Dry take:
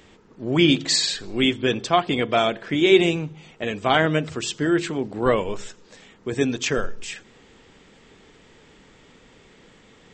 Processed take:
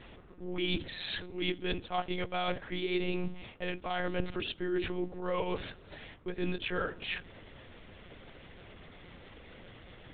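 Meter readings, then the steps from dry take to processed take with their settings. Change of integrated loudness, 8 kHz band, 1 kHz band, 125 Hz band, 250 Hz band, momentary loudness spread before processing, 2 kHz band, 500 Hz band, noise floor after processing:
-14.0 dB, under -40 dB, -12.5 dB, -12.5 dB, -14.0 dB, 16 LU, -12.0 dB, -14.0 dB, -54 dBFS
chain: HPF 110 Hz 12 dB/oct; reverse; compressor 8:1, threshold -31 dBFS, peak gain reduction 20.5 dB; reverse; monotone LPC vocoder at 8 kHz 180 Hz; gain +1 dB

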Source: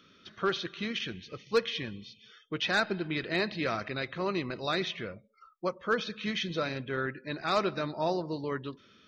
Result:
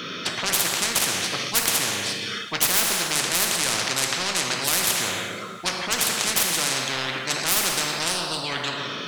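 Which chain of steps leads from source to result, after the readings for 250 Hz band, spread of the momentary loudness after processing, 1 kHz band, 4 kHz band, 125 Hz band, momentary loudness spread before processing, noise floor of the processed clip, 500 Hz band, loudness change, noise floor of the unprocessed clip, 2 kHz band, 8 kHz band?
+0.5 dB, 7 LU, +6.5 dB, +13.5 dB, +2.5 dB, 11 LU, -33 dBFS, -0.5 dB, +10.5 dB, -61 dBFS, +8.5 dB, +31.5 dB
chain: tracing distortion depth 0.19 ms; HPF 130 Hz 24 dB/oct; in parallel at -6.5 dB: soft clip -22 dBFS, distortion -15 dB; on the sum: two-slope reverb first 0.92 s, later 2.9 s, from -25 dB, DRR 5.5 dB; spectral compressor 10:1; gain +7.5 dB

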